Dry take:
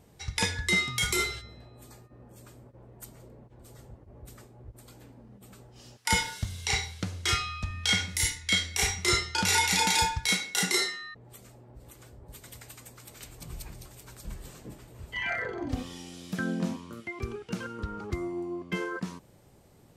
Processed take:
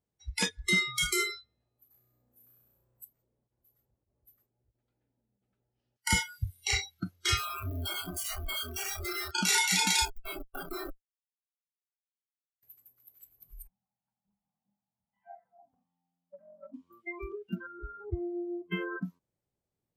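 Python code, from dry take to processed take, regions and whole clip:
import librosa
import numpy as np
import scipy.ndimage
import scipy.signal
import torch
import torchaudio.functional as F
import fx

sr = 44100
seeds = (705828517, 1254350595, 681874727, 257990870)

y = fx.chain(x, sr, fx.room_flutter(wall_m=5.6, rt60_s=1.5),
    fx.env_flatten(amount_pct=50), at=(1.94, 3.03))
y = fx.chain(y, sr, fx.lowpass(hz=2700.0, slope=12),
    fx.notch(hz=1100.0, q=5.7), at=(4.49, 5.96))
y = fx.chain(y, sr, fx.over_compress(threshold_db=-28.0, ratio=-0.5),
    fx.schmitt(flips_db=-38.0), at=(7.37, 9.31))
y = fx.chain(y, sr, fx.resample_bad(factor=2, down='none', up='filtered'),
    fx.echo_split(split_hz=760.0, low_ms=233, high_ms=92, feedback_pct=52, wet_db=-14.0),
    fx.schmitt(flips_db=-24.5), at=(10.05, 12.63))
y = fx.chain(y, sr, fx.double_bandpass(hz=400.0, octaves=2.0),
    fx.transformer_sat(knee_hz=770.0), at=(13.67, 16.74))
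y = fx.chain(y, sr, fx.lowpass(hz=1500.0, slope=6),
    fx.peak_eq(hz=190.0, db=-7.0, octaves=0.24),
    fx.notch(hz=1100.0, q=24.0), at=(17.55, 18.66))
y = fx.noise_reduce_blind(y, sr, reduce_db=30)
y = fx.dynamic_eq(y, sr, hz=800.0, q=1.2, threshold_db=-45.0, ratio=4.0, max_db=-6)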